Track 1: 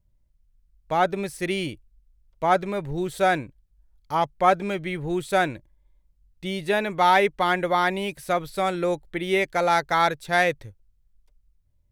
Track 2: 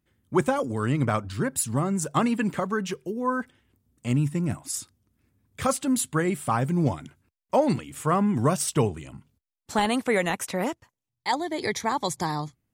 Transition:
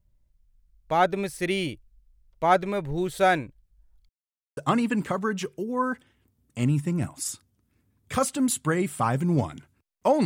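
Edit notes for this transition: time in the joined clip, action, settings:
track 1
4.09–4.57 mute
4.57 switch to track 2 from 2.05 s

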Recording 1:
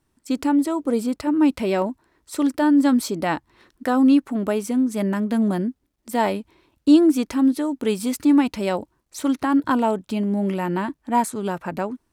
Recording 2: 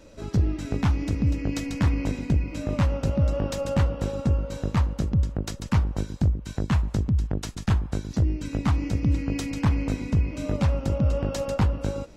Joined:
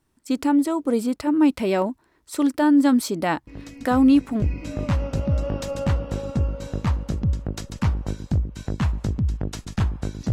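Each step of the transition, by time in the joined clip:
recording 1
3.47 add recording 2 from 1.37 s 0.95 s -11 dB
4.42 switch to recording 2 from 2.32 s

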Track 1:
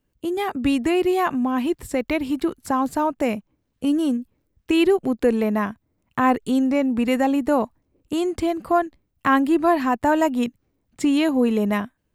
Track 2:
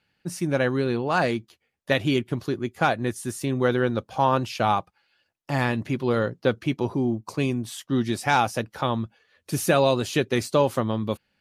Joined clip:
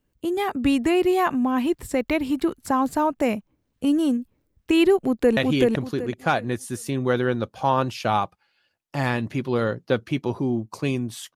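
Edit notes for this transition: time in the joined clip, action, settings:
track 1
4.99–5.37 echo throw 0.38 s, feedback 25%, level -1.5 dB
5.37 switch to track 2 from 1.92 s

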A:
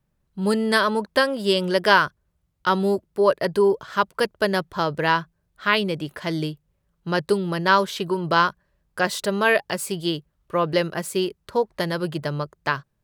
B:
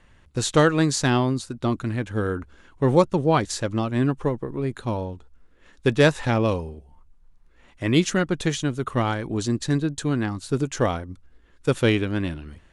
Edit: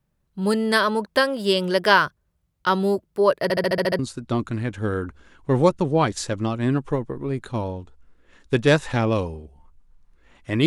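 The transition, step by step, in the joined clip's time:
A
3.43 stutter in place 0.07 s, 8 plays
3.99 switch to B from 1.32 s

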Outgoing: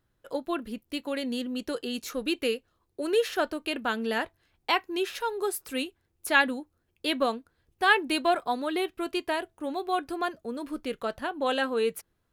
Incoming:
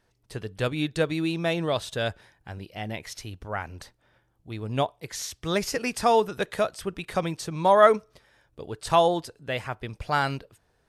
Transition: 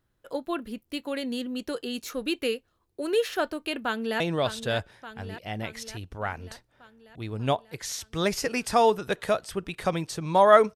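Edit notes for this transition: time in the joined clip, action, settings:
outgoing
3.84–4.2 echo throw 0.59 s, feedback 65%, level -10 dB
4.2 switch to incoming from 1.5 s

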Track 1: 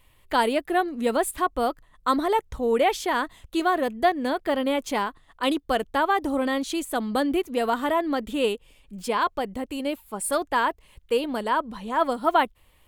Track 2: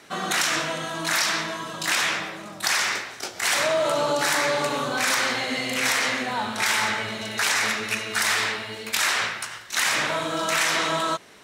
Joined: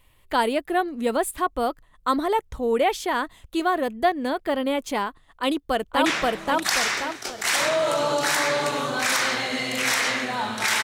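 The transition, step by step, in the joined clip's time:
track 1
5.34–6.06 echo throw 0.53 s, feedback 40%, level 0 dB
6.06 switch to track 2 from 2.04 s

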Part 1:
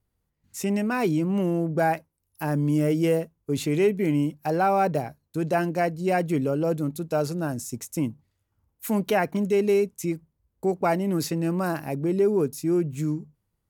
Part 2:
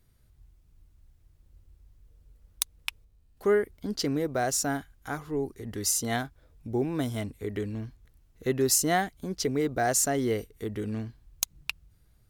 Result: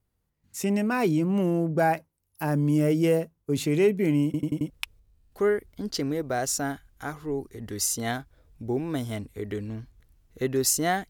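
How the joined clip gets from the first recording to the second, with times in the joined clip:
part 1
4.25 stutter in place 0.09 s, 5 plays
4.7 switch to part 2 from 2.75 s

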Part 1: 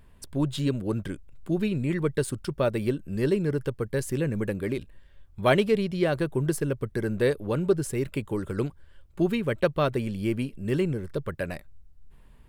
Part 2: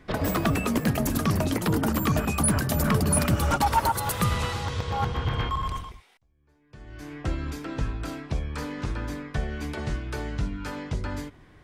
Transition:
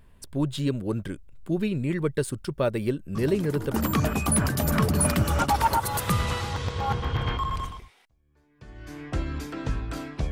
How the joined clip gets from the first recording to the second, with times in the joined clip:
part 1
3.15 add part 2 from 1.27 s 0.59 s -11.5 dB
3.74 switch to part 2 from 1.86 s

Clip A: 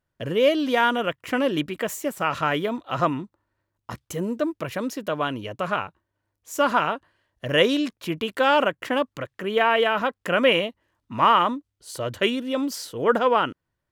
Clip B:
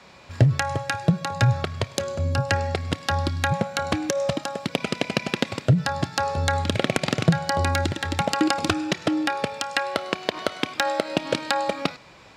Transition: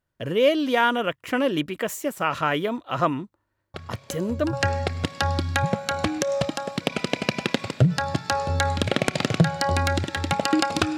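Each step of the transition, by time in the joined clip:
clip A
3.74 add clip B from 1.62 s 0.79 s -9 dB
4.53 switch to clip B from 2.41 s

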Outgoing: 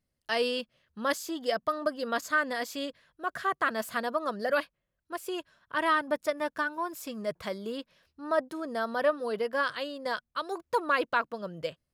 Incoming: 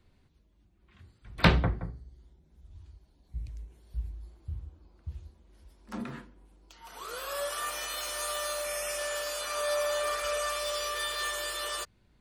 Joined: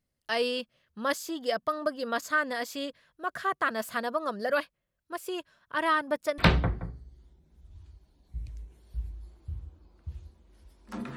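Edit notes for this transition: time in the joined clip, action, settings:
outgoing
6.38 switch to incoming from 1.38 s

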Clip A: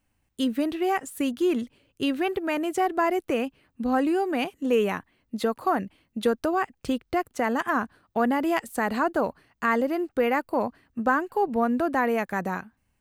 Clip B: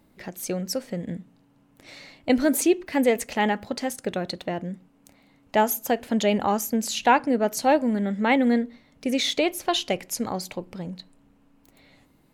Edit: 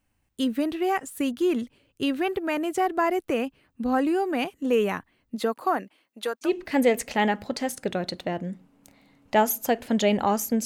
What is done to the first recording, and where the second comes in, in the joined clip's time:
clip A
5.35–6.55 HPF 160 Hz -> 910 Hz
6.48 switch to clip B from 2.69 s, crossfade 0.14 s

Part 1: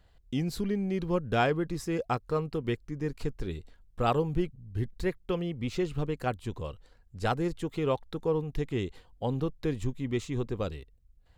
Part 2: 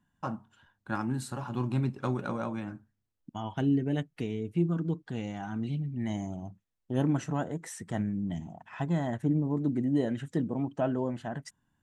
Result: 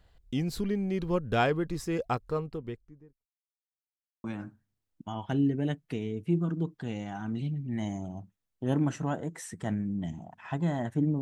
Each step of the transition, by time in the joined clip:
part 1
2.01–3.26 studio fade out
3.26–4.24 mute
4.24 switch to part 2 from 2.52 s

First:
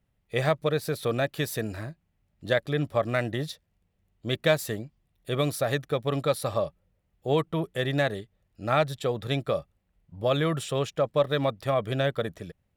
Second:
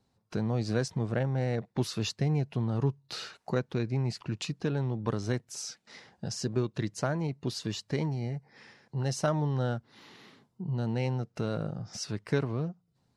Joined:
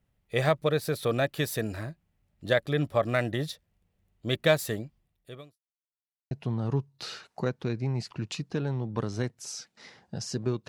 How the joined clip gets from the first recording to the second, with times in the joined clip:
first
4.97–5.6 fade out quadratic
5.6–6.31 mute
6.31 switch to second from 2.41 s

